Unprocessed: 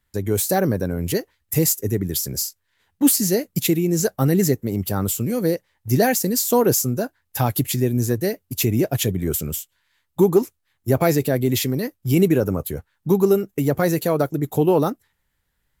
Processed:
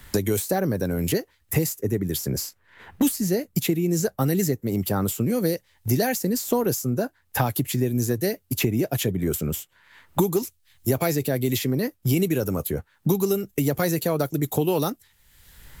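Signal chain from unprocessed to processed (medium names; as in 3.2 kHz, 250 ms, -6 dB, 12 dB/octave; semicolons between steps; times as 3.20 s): three bands compressed up and down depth 100%; trim -4.5 dB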